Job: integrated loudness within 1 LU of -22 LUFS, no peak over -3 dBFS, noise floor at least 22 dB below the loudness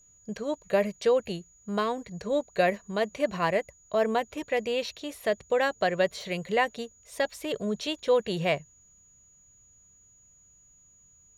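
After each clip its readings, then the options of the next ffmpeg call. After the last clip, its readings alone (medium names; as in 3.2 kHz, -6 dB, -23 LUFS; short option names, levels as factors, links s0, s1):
steady tone 6.8 kHz; tone level -57 dBFS; loudness -28.5 LUFS; peak level -12.5 dBFS; loudness target -22.0 LUFS
-> -af "bandreject=f=6800:w=30"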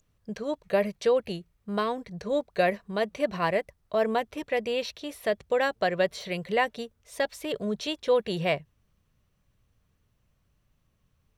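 steady tone not found; loudness -28.5 LUFS; peak level -12.5 dBFS; loudness target -22.0 LUFS
-> -af "volume=2.11"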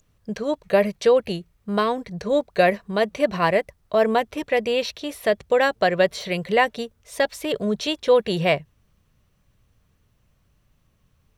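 loudness -22.5 LUFS; peak level -6.0 dBFS; noise floor -65 dBFS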